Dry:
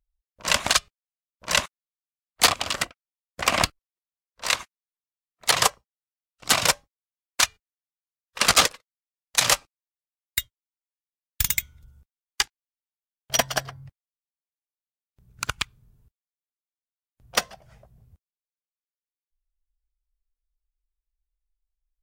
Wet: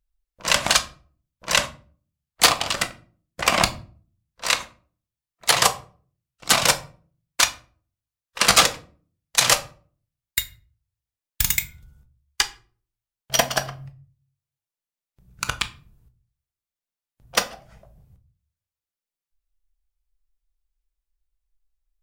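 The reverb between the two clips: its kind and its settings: simulated room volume 320 m³, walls furnished, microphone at 0.74 m; trim +2 dB

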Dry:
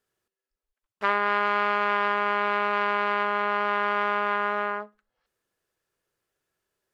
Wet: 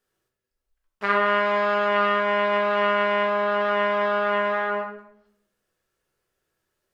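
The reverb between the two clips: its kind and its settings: simulated room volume 150 m³, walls mixed, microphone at 1 m

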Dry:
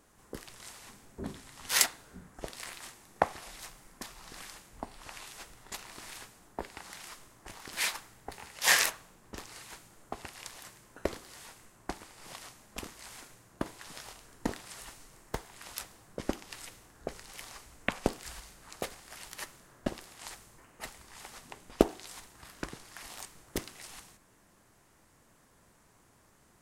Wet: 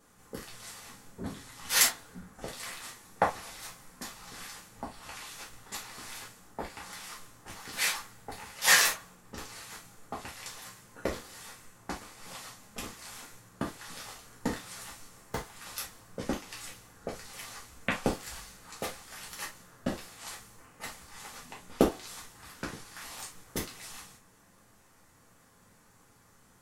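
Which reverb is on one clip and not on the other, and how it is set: gated-style reverb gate 90 ms falling, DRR -4 dB; trim -3 dB

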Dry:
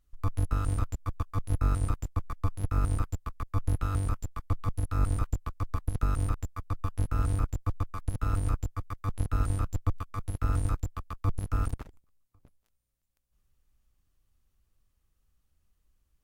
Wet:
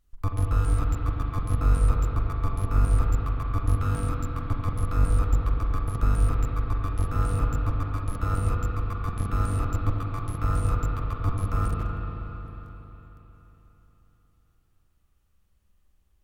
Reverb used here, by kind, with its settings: spring tank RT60 3.9 s, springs 40/45 ms, chirp 25 ms, DRR -1 dB; trim +2 dB

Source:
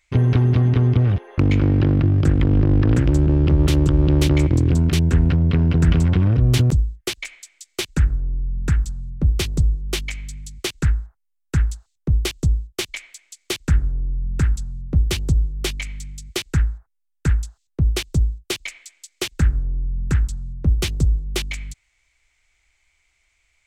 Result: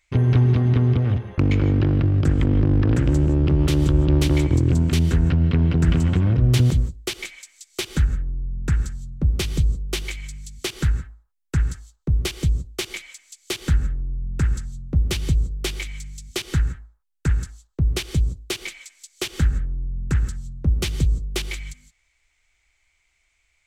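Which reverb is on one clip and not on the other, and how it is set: gated-style reverb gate 190 ms rising, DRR 11.5 dB; trim -2 dB

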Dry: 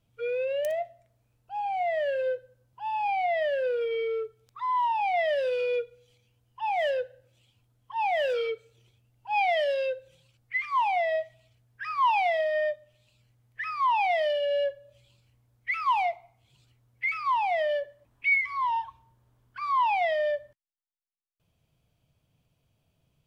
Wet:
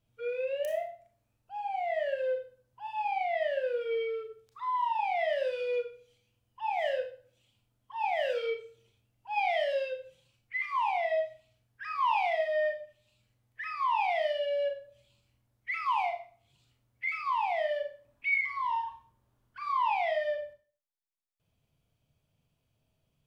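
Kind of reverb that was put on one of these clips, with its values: Schroeder reverb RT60 0.38 s, combs from 27 ms, DRR 3.5 dB; trim -5.5 dB

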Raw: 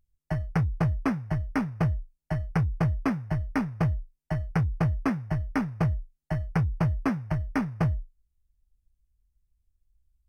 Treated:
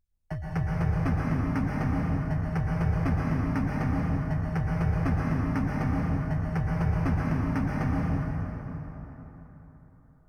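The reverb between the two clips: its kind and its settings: plate-style reverb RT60 4 s, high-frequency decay 0.6×, pre-delay 105 ms, DRR -4.5 dB; trim -5.5 dB

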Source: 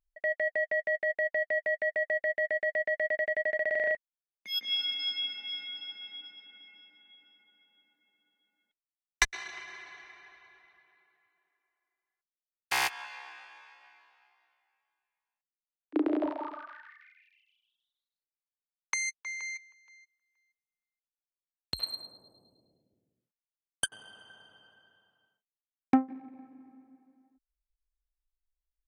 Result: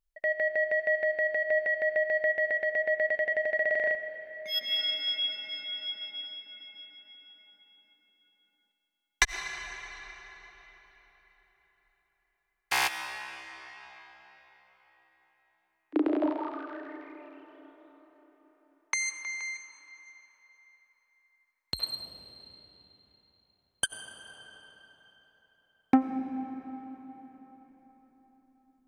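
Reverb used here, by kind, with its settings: algorithmic reverb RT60 4.8 s, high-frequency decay 0.75×, pre-delay 50 ms, DRR 9 dB; trim +1.5 dB

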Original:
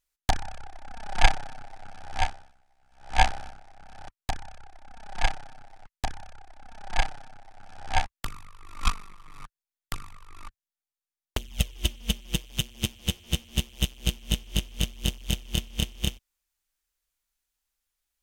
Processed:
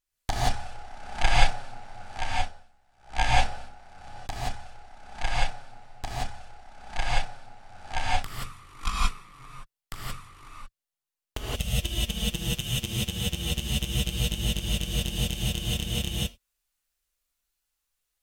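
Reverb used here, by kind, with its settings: gated-style reverb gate 200 ms rising, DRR -7 dB; trim -6 dB

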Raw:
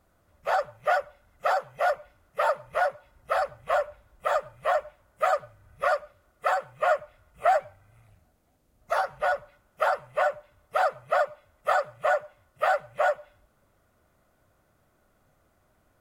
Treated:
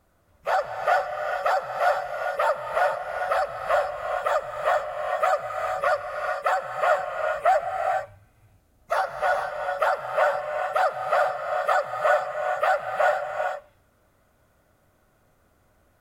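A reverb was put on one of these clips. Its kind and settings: gated-style reverb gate 480 ms rising, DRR 2.5 dB; trim +1.5 dB

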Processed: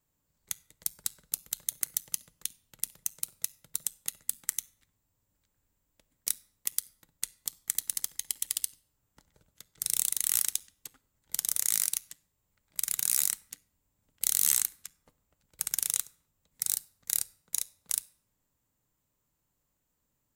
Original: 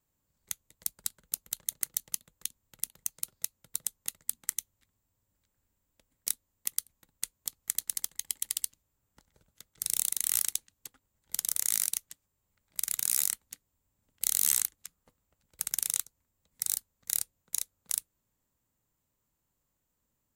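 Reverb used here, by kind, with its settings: simulated room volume 2000 m³, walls furnished, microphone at 0.41 m; trim +1 dB

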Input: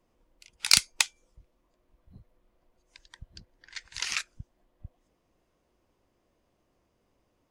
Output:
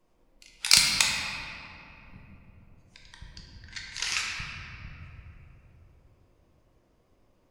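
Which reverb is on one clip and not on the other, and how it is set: simulated room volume 130 m³, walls hard, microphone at 0.54 m

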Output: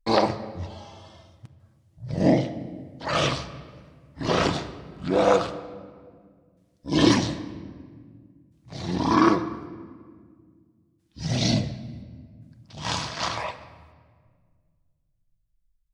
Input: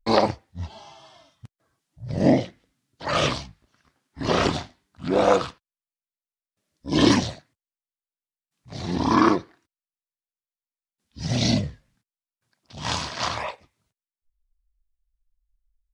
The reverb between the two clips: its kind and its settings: simulated room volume 2600 m³, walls mixed, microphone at 0.65 m; trim -1.5 dB

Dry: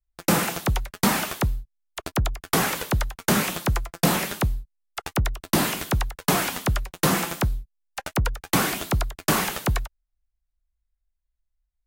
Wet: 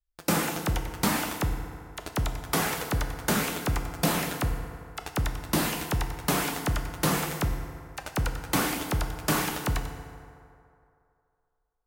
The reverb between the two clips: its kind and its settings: FDN reverb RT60 2.6 s, low-frequency decay 0.75×, high-frequency decay 0.5×, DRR 5.5 dB; trim -5 dB

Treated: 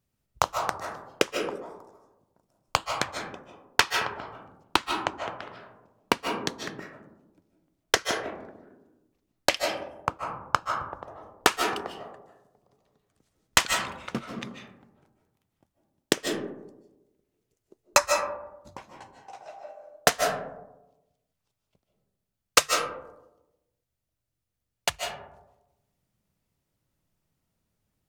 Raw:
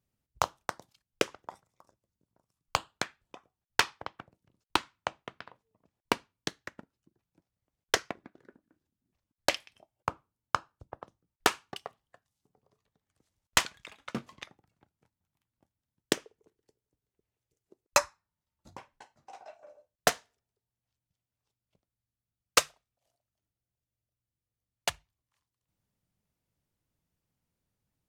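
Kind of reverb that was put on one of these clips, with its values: algorithmic reverb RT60 0.99 s, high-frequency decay 0.3×, pre-delay 110 ms, DRR 3 dB; trim +4 dB

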